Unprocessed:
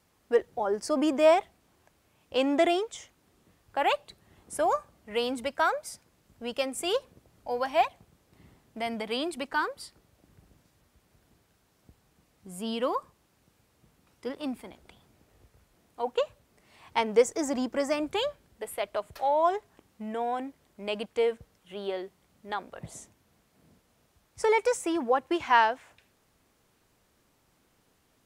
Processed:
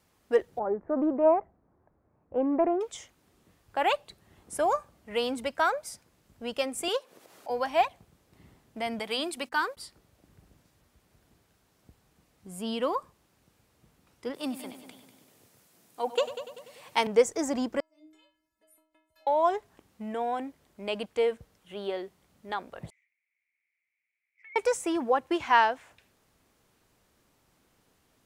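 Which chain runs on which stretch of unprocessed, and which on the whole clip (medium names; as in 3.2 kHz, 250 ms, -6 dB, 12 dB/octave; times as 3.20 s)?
0.59–2.81 s: Gaussian low-pass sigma 6.6 samples + loudspeaker Doppler distortion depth 0.18 ms
6.88–7.50 s: high-pass 440 Hz + upward compressor, threshold -42 dBFS
8.99–9.77 s: gate -46 dBFS, range -34 dB + tilt EQ +1.5 dB/octave + hum notches 60/120/180/240 Hz
14.34–17.07 s: high-pass 120 Hz 24 dB/octave + treble shelf 4.7 kHz +11.5 dB + multi-head delay 97 ms, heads first and second, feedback 48%, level -14 dB
17.80–19.27 s: compression, threshold -40 dBFS + inverted gate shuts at -30 dBFS, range -32 dB + inharmonic resonator 310 Hz, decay 0.55 s, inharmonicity 0.008
22.90–24.56 s: Butterworth band-pass 2.2 kHz, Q 5.8 + compression 10:1, threshold -47 dBFS
whole clip: none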